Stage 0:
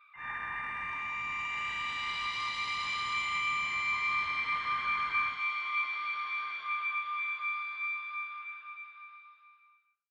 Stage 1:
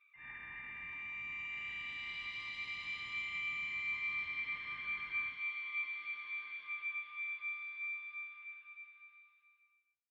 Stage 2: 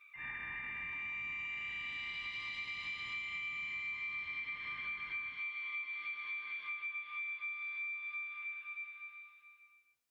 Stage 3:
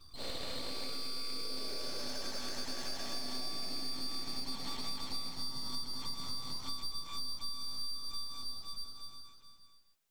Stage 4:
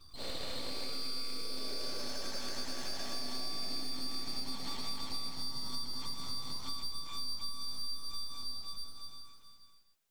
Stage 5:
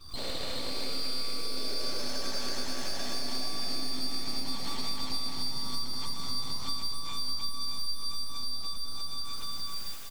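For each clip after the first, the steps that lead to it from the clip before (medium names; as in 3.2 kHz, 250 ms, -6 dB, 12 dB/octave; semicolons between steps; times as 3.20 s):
FFT filter 320 Hz 0 dB, 1.3 kHz -13 dB, 2.2 kHz +3 dB, 5.8 kHz -9 dB; trim -8 dB
compression 6:1, threshold -49 dBFS, peak gain reduction 13.5 dB; trim +9 dB
full-wave rectifier; trim +6 dB
bit-crushed delay 81 ms, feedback 35%, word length 10-bit, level -13 dB
recorder AGC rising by 66 dB/s; delay 620 ms -10 dB; trim +5 dB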